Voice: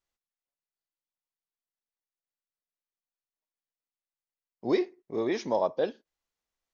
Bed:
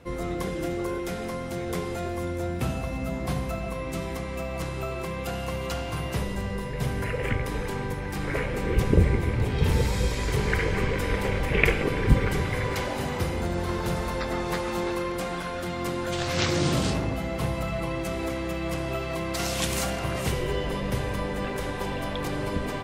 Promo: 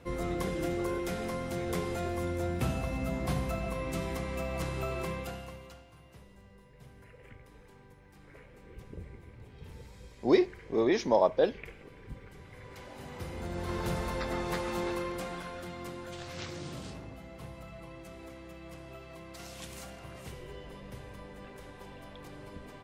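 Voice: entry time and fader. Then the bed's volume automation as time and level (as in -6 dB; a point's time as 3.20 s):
5.60 s, +2.5 dB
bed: 5.10 s -3 dB
5.91 s -25.5 dB
12.33 s -25.5 dB
13.81 s -5 dB
14.91 s -5 dB
16.65 s -17.5 dB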